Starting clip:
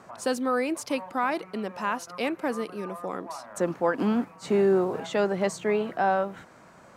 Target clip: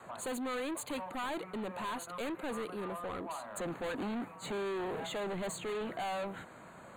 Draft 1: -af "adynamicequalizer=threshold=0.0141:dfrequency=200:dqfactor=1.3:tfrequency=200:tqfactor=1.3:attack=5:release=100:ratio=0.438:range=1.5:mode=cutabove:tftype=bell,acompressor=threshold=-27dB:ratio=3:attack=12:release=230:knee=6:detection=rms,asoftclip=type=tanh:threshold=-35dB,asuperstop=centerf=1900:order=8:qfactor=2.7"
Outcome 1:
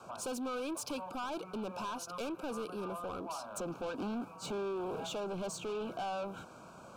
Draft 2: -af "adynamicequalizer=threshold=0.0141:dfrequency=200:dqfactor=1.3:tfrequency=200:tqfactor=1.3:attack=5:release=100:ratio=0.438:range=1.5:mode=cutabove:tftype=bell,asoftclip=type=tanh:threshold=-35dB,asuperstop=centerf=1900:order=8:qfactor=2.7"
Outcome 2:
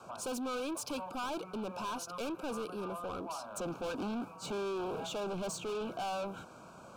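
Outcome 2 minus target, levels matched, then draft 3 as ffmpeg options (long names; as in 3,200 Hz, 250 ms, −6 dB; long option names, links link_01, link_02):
2,000 Hz band −3.5 dB
-af "adynamicequalizer=threshold=0.0141:dfrequency=200:dqfactor=1.3:tfrequency=200:tqfactor=1.3:attack=5:release=100:ratio=0.438:range=1.5:mode=cutabove:tftype=bell,asoftclip=type=tanh:threshold=-35dB,asuperstop=centerf=5400:order=8:qfactor=2.7"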